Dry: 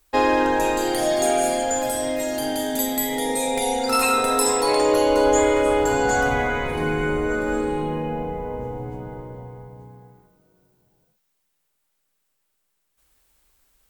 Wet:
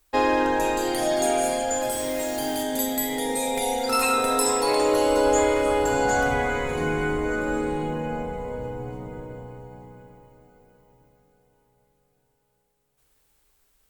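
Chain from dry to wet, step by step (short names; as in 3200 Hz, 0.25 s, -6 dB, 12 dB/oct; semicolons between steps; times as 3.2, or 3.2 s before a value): 1.91–2.63 modulation noise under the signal 14 dB; on a send: diffused feedback echo 0.703 s, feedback 44%, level -15 dB; on the sum: gain -2.5 dB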